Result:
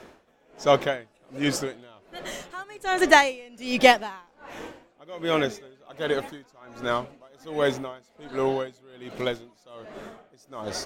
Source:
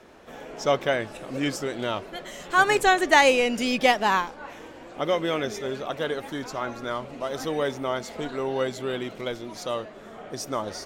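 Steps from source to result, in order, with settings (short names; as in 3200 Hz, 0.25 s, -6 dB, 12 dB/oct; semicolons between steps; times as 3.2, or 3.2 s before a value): dB-linear tremolo 1.3 Hz, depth 28 dB; gain +5 dB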